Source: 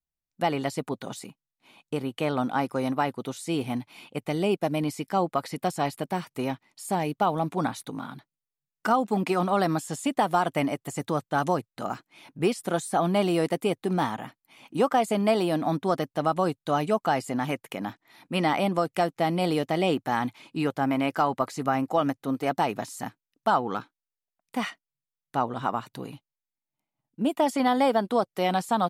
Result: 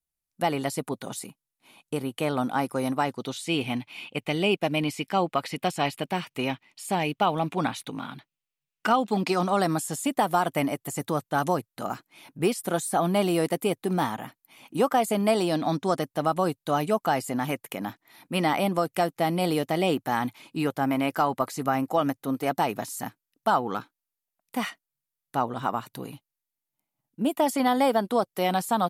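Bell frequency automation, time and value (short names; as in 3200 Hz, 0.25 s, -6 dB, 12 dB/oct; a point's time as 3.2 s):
bell +10 dB 0.85 oct
2.88 s 11000 Hz
3.49 s 2700 Hz
8.91 s 2700 Hz
9.96 s 13000 Hz
15.23 s 13000 Hz
15.62 s 3700 Hz
16.14 s 13000 Hz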